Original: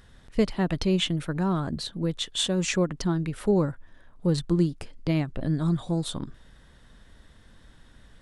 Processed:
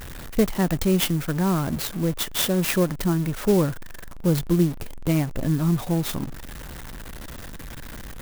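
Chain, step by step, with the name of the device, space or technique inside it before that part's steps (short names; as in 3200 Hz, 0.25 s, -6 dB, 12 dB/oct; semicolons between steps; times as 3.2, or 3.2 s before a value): early CD player with a faulty converter (zero-crossing step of -34.5 dBFS; clock jitter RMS 0.053 ms); gain +2.5 dB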